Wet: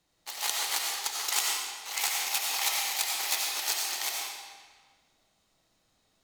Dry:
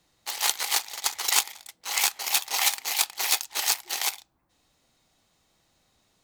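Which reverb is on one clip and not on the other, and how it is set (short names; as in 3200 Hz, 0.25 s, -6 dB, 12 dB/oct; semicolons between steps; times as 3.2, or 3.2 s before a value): digital reverb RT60 1.5 s, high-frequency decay 0.9×, pre-delay 50 ms, DRR -2 dB; gain -7 dB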